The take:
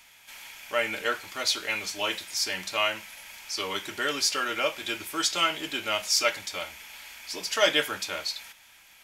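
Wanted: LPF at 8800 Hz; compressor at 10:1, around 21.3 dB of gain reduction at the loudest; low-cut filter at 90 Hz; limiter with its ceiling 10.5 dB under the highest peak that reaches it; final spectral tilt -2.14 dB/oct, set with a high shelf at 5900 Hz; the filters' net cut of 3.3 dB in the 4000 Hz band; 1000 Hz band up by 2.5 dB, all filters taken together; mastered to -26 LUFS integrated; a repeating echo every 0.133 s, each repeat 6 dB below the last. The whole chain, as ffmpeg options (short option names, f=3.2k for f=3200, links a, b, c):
-af "highpass=90,lowpass=8.8k,equalizer=f=1k:t=o:g=4,equalizer=f=4k:t=o:g=-7,highshelf=f=5.9k:g=5.5,acompressor=threshold=-38dB:ratio=10,alimiter=level_in=11dB:limit=-24dB:level=0:latency=1,volume=-11dB,aecho=1:1:133|266|399|532|665|798:0.501|0.251|0.125|0.0626|0.0313|0.0157,volume=17.5dB"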